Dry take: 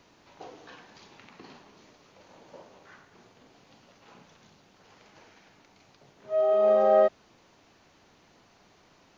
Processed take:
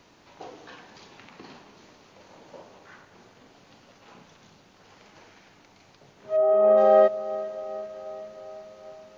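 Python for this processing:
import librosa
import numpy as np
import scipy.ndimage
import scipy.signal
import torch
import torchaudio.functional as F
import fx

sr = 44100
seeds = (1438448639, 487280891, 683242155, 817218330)

y = fx.lowpass(x, sr, hz=fx.line((6.36, 1300.0), (6.76, 2000.0)), slope=12, at=(6.36, 6.76), fade=0.02)
y = fx.echo_diffused(y, sr, ms=454, feedback_pct=65, wet_db=-16.0)
y = y * librosa.db_to_amplitude(3.0)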